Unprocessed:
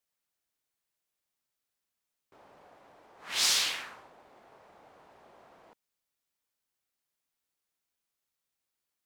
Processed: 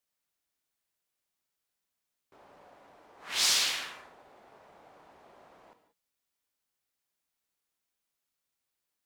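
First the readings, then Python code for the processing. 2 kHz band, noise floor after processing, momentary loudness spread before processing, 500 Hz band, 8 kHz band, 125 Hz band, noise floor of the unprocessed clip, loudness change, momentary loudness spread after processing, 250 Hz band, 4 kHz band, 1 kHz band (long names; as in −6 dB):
+0.5 dB, below −85 dBFS, 16 LU, +0.5 dB, +0.5 dB, can't be measured, below −85 dBFS, 0.0 dB, 13 LU, +0.5 dB, +0.5 dB, +0.5 dB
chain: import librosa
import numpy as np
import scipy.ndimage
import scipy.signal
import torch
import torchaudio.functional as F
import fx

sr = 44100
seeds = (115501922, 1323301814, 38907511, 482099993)

y = fx.rev_gated(x, sr, seeds[0], gate_ms=210, shape='flat', drr_db=8.0)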